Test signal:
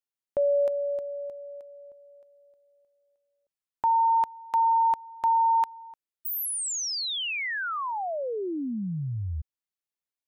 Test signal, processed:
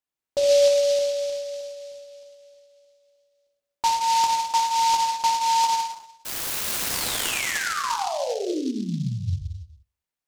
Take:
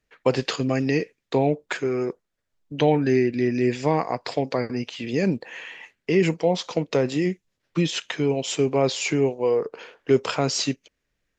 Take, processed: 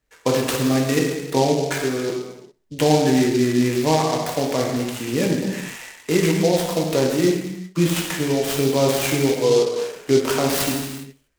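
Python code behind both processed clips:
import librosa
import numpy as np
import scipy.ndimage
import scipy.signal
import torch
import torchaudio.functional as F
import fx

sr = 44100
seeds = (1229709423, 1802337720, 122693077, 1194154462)

p1 = x + fx.echo_feedback(x, sr, ms=65, feedback_pct=39, wet_db=-21.0, dry=0)
p2 = fx.rev_gated(p1, sr, seeds[0], gate_ms=430, shape='falling', drr_db=-2.0)
y = fx.noise_mod_delay(p2, sr, seeds[1], noise_hz=4400.0, depth_ms=0.057)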